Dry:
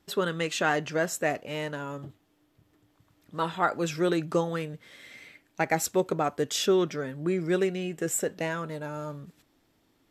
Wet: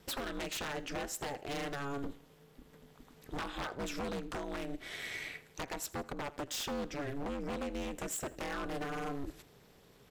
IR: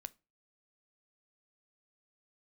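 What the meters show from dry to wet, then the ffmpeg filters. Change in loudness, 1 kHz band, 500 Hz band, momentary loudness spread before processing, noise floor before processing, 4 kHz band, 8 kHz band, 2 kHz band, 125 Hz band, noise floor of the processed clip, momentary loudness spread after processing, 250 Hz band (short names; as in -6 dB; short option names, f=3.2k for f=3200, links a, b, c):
-11.0 dB, -10.0 dB, -13.0 dB, 16 LU, -69 dBFS, -6.5 dB, -8.5 dB, -9.0 dB, -11.5 dB, -62 dBFS, 8 LU, -10.0 dB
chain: -filter_complex "[0:a]acompressor=threshold=-39dB:ratio=16,aeval=exprs='val(0)*sin(2*PI*140*n/s)':c=same,acontrast=59,aeval=exprs='0.0178*(abs(mod(val(0)/0.0178+3,4)-2)-1)':c=same,asplit=2[a][b];[b]aecho=0:1:82|164|246:0.0944|0.0397|0.0167[c];[a][c]amix=inputs=2:normalize=0,volume=3.5dB"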